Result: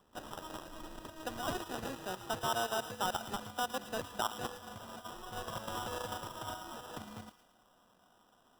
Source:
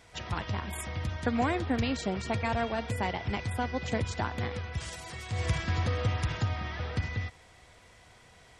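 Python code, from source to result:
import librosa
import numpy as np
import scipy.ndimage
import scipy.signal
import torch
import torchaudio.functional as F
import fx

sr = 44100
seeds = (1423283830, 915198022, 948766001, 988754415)

p1 = scipy.signal.sosfilt(scipy.signal.butter(4, 78.0, 'highpass', fs=sr, output='sos'), x)
p2 = fx.level_steps(p1, sr, step_db=11)
p3 = fx.filter_sweep_bandpass(p2, sr, from_hz=3800.0, to_hz=990.0, start_s=0.06, end_s=2.43, q=1.2)
p4 = fx.sample_hold(p3, sr, seeds[0], rate_hz=2200.0, jitter_pct=0)
p5 = p4 + fx.echo_wet_highpass(p4, sr, ms=112, feedback_pct=48, hz=1900.0, wet_db=-10.5, dry=0)
y = p5 * librosa.db_to_amplitude(4.0)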